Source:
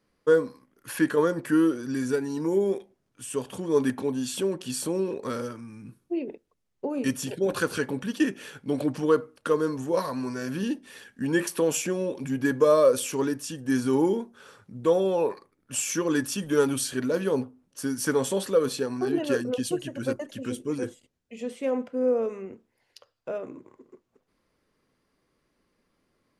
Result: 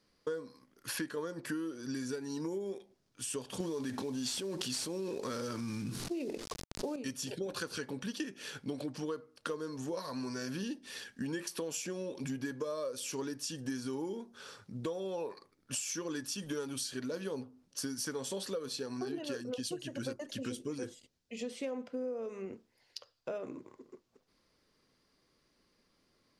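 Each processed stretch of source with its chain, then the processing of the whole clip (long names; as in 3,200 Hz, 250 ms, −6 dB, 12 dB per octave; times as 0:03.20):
0:03.60–0:06.96: variable-slope delta modulation 64 kbit/s + envelope flattener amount 70%
whole clip: parametric band 4,800 Hz +9.5 dB 1.1 octaves; downward compressor 10 to 1, threshold −33 dBFS; level −2 dB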